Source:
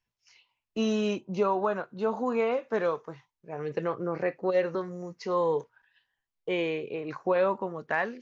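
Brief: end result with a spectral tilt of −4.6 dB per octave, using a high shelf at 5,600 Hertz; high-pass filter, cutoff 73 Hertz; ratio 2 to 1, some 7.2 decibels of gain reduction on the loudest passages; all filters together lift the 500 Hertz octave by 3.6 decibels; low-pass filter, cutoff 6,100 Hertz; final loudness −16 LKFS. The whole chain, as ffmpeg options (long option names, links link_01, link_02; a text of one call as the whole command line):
ffmpeg -i in.wav -af "highpass=73,lowpass=6100,equalizer=frequency=500:width_type=o:gain=4,highshelf=frequency=5600:gain=7,acompressor=threshold=-31dB:ratio=2,volume=16.5dB" out.wav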